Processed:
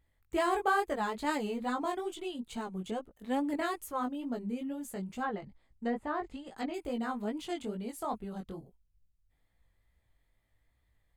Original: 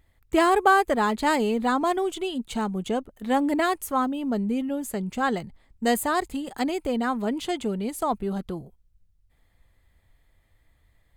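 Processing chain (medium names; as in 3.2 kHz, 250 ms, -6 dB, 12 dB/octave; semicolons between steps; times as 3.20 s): 5.21–6.74 s: low-pass that closes with the level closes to 1.2 kHz, closed at -18.5 dBFS; chorus 2.3 Hz, delay 16.5 ms, depth 4.4 ms; trim -7 dB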